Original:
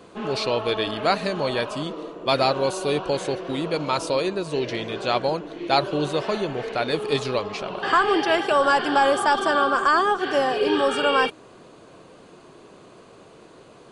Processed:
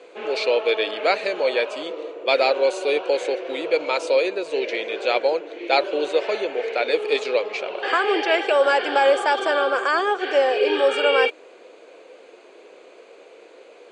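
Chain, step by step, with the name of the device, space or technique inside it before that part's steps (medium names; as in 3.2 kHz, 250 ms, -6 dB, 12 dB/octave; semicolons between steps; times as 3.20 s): phone speaker on a table (cabinet simulation 350–7800 Hz, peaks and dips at 500 Hz +8 dB, 1.1 kHz -7 dB, 2.3 kHz +9 dB, 5.4 kHz -5 dB)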